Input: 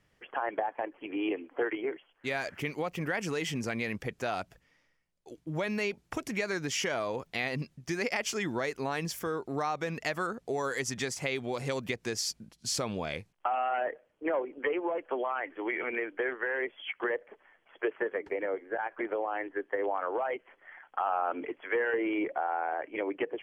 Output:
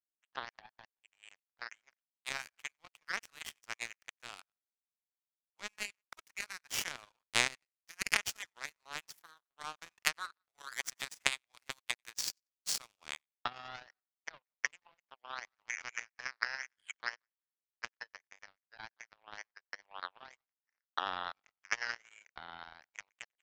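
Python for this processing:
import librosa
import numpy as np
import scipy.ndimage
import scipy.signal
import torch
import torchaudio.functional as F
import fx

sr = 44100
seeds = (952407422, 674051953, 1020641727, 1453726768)

y = scipy.signal.sosfilt(scipy.signal.butter(4, 980.0, 'highpass', fs=sr, output='sos'), x)
y = fx.echo_split(y, sr, split_hz=1700.0, low_ms=176, high_ms=93, feedback_pct=52, wet_db=-16)
y = fx.power_curve(y, sr, exponent=3.0)
y = y * librosa.db_to_amplitude(14.5)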